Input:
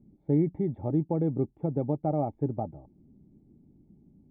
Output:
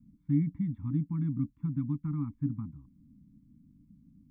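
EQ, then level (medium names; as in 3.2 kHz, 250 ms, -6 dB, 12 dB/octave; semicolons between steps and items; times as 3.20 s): Chebyshev band-stop 290–1000 Hz, order 5; 0.0 dB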